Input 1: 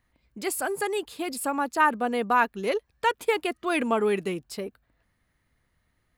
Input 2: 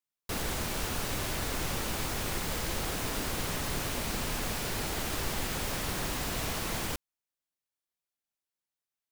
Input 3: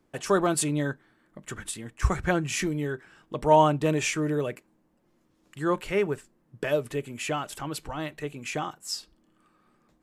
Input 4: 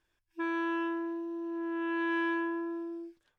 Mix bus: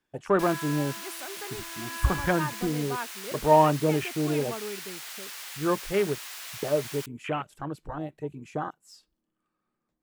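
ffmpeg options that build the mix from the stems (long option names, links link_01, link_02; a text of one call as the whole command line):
ffmpeg -i stem1.wav -i stem2.wav -i stem3.wav -i stem4.wav -filter_complex "[0:a]adelay=600,volume=-13dB[link_01];[1:a]highpass=1500,adelay=100,volume=-3dB[link_02];[2:a]deesser=0.65,afwtdn=0.0251,volume=0dB[link_03];[3:a]highpass=frequency=530:width=0.5412,highpass=frequency=530:width=1.3066,volume=-2.5dB[link_04];[link_01][link_02][link_03][link_04]amix=inputs=4:normalize=0" out.wav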